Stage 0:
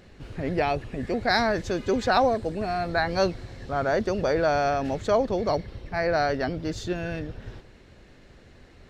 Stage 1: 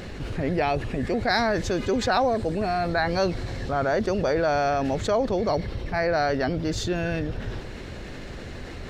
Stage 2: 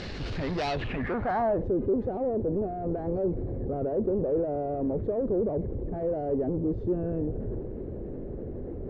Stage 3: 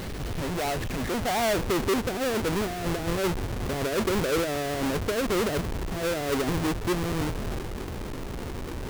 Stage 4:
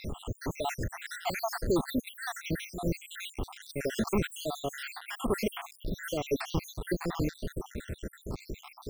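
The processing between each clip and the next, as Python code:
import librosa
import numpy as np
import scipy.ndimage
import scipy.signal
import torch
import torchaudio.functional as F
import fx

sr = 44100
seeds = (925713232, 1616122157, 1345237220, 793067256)

y1 = fx.env_flatten(x, sr, amount_pct=50)
y1 = y1 * 10.0 ** (-2.0 / 20.0)
y2 = 10.0 ** (-26.5 / 20.0) * np.tanh(y1 / 10.0 ** (-26.5 / 20.0))
y2 = fx.filter_sweep_lowpass(y2, sr, from_hz=4800.0, to_hz=430.0, start_s=0.66, end_s=1.72, q=2.0)
y3 = fx.halfwave_hold(y2, sr)
y3 = y3 * 10.0 ** (-2.0 / 20.0)
y4 = fx.spec_dropout(y3, sr, seeds[0], share_pct=78)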